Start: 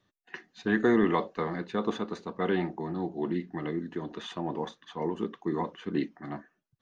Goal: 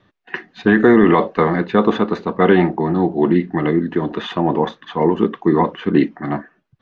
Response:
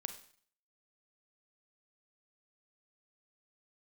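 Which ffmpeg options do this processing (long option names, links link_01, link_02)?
-af "lowpass=3000,alimiter=level_in=17dB:limit=-1dB:release=50:level=0:latency=1,volume=-1dB"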